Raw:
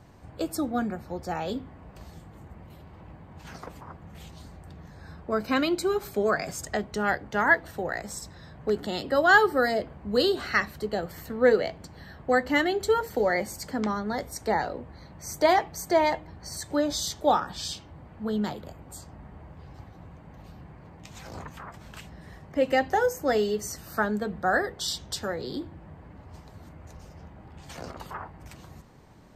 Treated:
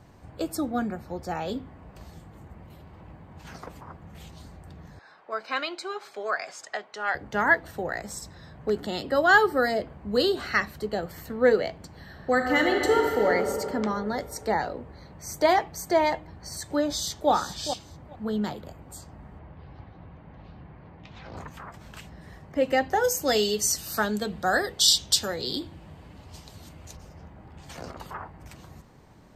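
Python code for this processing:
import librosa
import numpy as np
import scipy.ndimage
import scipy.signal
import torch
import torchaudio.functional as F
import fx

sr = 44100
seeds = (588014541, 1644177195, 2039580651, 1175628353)

y = fx.bandpass_edges(x, sr, low_hz=730.0, high_hz=5200.0, at=(4.99, 7.15))
y = fx.reverb_throw(y, sr, start_s=12.04, length_s=1.24, rt60_s=3.0, drr_db=1.0)
y = fx.echo_throw(y, sr, start_s=16.88, length_s=0.43, ms=420, feedback_pct=15, wet_db=-9.5)
y = fx.lowpass(y, sr, hz=4100.0, slope=24, at=(19.39, 21.37))
y = fx.band_shelf(y, sr, hz=5900.0, db=12.0, octaves=2.6, at=(23.03, 26.95), fade=0.02)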